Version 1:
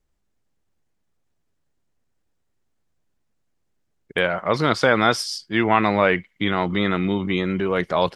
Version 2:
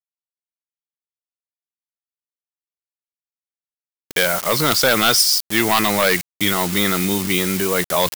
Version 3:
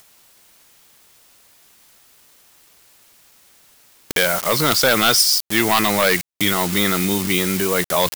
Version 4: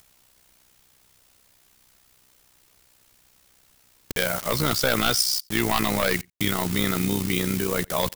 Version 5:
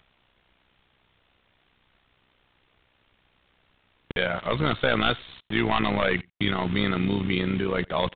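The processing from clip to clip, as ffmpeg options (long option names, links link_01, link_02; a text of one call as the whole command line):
ffmpeg -i in.wav -af "acrusher=bits=5:mix=0:aa=0.000001,aeval=exprs='0.841*sin(PI/2*2.24*val(0)/0.841)':channel_layout=same,crystalizer=i=4:c=0,volume=-9.5dB" out.wav
ffmpeg -i in.wav -af "acompressor=mode=upward:threshold=-18dB:ratio=2.5" out.wav
ffmpeg -i in.wav -filter_complex "[0:a]lowshelf=frequency=140:gain=12,tremolo=f=63:d=0.667,asplit=2[link_01][link_02];[link_02]adelay=87.46,volume=-29dB,highshelf=frequency=4000:gain=-1.97[link_03];[link_01][link_03]amix=inputs=2:normalize=0,volume=-4.5dB" out.wav
ffmpeg -i in.wav -af "aresample=8000,aresample=44100" out.wav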